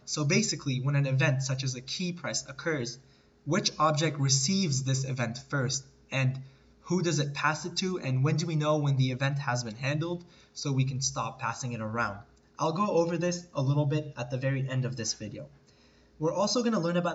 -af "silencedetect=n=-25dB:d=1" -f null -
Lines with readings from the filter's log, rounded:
silence_start: 15.11
silence_end: 16.23 | silence_duration: 1.11